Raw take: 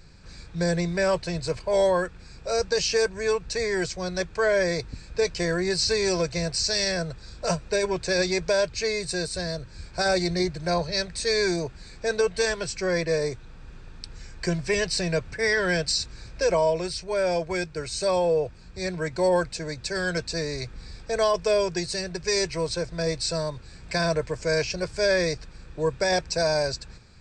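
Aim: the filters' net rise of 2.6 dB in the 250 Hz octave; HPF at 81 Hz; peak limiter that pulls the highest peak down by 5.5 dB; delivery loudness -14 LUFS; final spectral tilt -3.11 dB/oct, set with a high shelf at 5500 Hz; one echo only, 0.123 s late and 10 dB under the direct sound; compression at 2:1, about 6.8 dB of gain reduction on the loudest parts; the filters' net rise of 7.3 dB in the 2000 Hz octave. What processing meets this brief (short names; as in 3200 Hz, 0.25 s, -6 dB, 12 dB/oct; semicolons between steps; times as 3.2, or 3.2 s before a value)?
HPF 81 Hz; bell 250 Hz +5 dB; bell 2000 Hz +8 dB; high shelf 5500 Hz +9 dB; compressor 2:1, threshold -27 dBFS; limiter -18.5 dBFS; echo 0.123 s -10 dB; gain +14.5 dB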